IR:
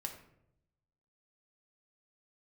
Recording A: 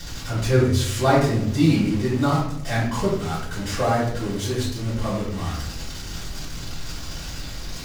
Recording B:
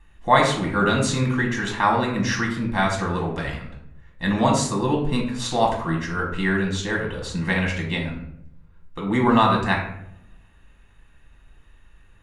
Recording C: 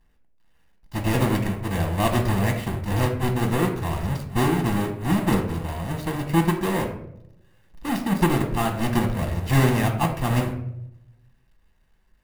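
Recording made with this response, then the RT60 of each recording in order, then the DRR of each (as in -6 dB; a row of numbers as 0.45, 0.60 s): C; 0.75, 0.75, 0.80 s; -10.5, -1.5, 3.0 dB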